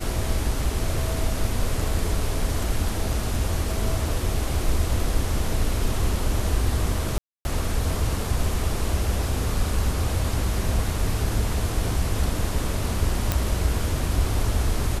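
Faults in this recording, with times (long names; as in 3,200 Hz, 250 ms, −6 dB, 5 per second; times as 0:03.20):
0:07.18–0:07.45: drop-out 270 ms
0:13.32: click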